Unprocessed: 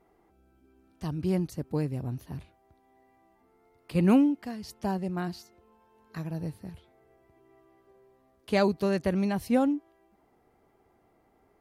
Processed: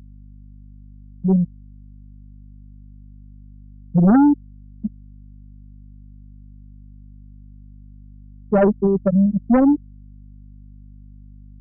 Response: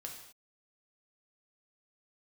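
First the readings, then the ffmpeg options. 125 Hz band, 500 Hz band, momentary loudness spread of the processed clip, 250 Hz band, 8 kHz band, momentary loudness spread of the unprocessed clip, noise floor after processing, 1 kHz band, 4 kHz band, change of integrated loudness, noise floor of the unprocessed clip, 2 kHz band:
+8.0 dB, +7.0 dB, 16 LU, +9.5 dB, n/a, 17 LU, -42 dBFS, +7.5 dB, under -20 dB, +10.5 dB, -67 dBFS, +1.0 dB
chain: -af "afftfilt=real='re*gte(hypot(re,im),0.398)':imag='im*gte(hypot(re,im),0.398)':win_size=1024:overlap=0.75,highpass=f=62:w=0.5412,highpass=f=62:w=1.3066,aeval=exprs='0.2*(cos(1*acos(clip(val(0)/0.2,-1,1)))-cos(1*PI/2))+0.0447*(cos(5*acos(clip(val(0)/0.2,-1,1)))-cos(5*PI/2))':c=same,aeval=exprs='val(0)+0.00355*(sin(2*PI*50*n/s)+sin(2*PI*2*50*n/s)/2+sin(2*PI*3*50*n/s)/3+sin(2*PI*4*50*n/s)/4+sin(2*PI*5*50*n/s)/5)':c=same,volume=8dB"

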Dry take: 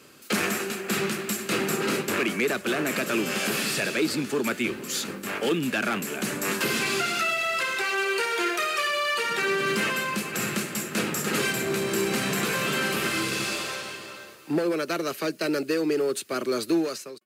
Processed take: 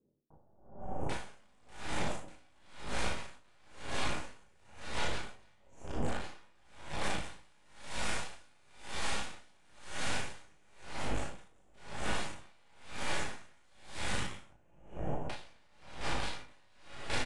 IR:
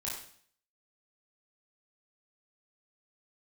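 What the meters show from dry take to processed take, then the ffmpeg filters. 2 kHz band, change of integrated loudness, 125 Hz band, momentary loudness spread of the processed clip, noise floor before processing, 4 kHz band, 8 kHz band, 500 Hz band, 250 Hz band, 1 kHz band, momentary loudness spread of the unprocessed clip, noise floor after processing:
-15.5 dB, -14.0 dB, -8.0 dB, 19 LU, -43 dBFS, -13.0 dB, -15.0 dB, -17.5 dB, -18.5 dB, -11.5 dB, 5 LU, -63 dBFS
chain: -filter_complex "[0:a]afwtdn=0.0447,highshelf=f=4.3k:g=7.5,aeval=exprs='(mod(25.1*val(0)+1,2)-1)/25.1':c=same,asuperstop=centerf=4200:order=20:qfactor=1.4,aemphasis=mode=reproduction:type=75kf,acrossover=split=500[a][b];[b]adelay=790[c];[a][c]amix=inputs=2:normalize=0,aeval=exprs='0.075*(cos(1*acos(clip(val(0)/0.075,-1,1)))-cos(1*PI/2))+0.0376*(cos(6*acos(clip(val(0)/0.075,-1,1)))-cos(6*PI/2))+0.015*(cos(7*acos(clip(val(0)/0.075,-1,1)))-cos(7*PI/2))':c=same,aresample=22050,aresample=44100[d];[1:a]atrim=start_sample=2205,asetrate=41013,aresample=44100[e];[d][e]afir=irnorm=-1:irlink=0,acompressor=threshold=-36dB:ratio=6,aeval=exprs='val(0)*pow(10,-35*(0.5-0.5*cos(2*PI*0.99*n/s))/20)':c=same,volume=9dB"

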